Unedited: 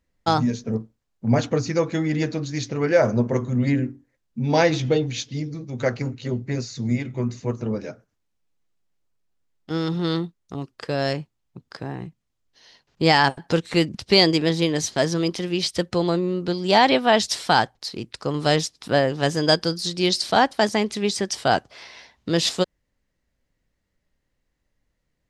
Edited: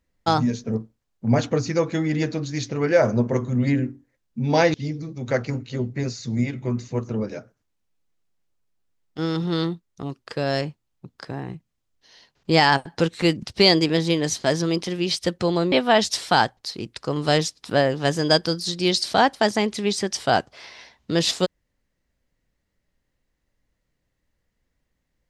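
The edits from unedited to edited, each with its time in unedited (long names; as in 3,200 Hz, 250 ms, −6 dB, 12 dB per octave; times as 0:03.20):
0:04.74–0:05.26: remove
0:16.24–0:16.90: remove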